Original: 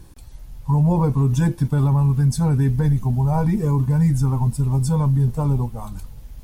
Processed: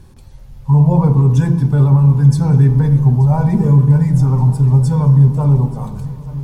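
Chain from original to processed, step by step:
high-shelf EQ 7,600 Hz −9 dB
feedback echo with a long and a short gap by turns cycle 1,174 ms, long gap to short 3 to 1, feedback 55%, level −19 dB
on a send at −6 dB: convolution reverb RT60 1.0 s, pre-delay 3 ms
on the sum: level +2 dB

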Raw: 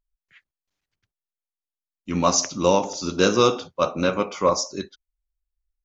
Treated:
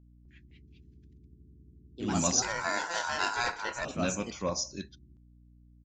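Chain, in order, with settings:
parametric band 950 Hz −10 dB 1.3 octaves
comb filter 1.2 ms, depth 47%
mains hum 60 Hz, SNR 22 dB
delay with pitch and tempo change per echo 254 ms, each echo +3 semitones, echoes 2
0:02.42–0:03.85: ring modulation 1,200 Hz
level −7 dB
Ogg Vorbis 96 kbit/s 16,000 Hz

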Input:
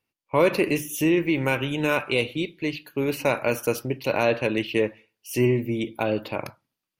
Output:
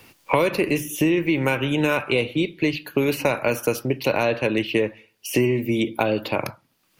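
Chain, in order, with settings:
multiband upward and downward compressor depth 100%
level +1.5 dB

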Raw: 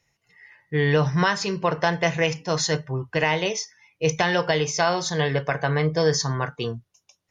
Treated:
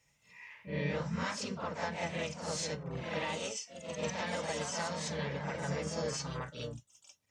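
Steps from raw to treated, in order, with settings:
high-shelf EQ 5,100 Hz +4.5 dB
downward compressor 2 to 1, threshold −41 dBFS, peak gain reduction 14 dB
pitch-shifted copies added −12 semitones −12 dB, +4 semitones −5 dB, +5 semitones −16 dB
notch comb filter 360 Hz
backwards echo 49 ms −5.5 dB
delay with pitch and tempo change per echo 81 ms, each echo +1 semitone, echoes 2, each echo −6 dB
level −5 dB

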